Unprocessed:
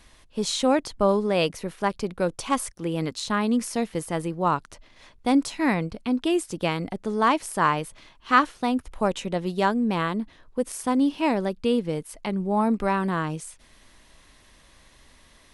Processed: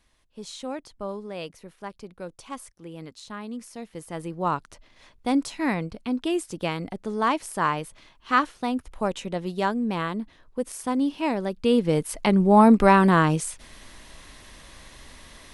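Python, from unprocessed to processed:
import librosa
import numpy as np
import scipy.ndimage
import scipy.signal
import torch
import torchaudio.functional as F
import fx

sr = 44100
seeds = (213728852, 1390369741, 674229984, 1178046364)

y = fx.gain(x, sr, db=fx.line((3.78, -12.5), (4.41, -2.5), (11.42, -2.5), (12.05, 8.0)))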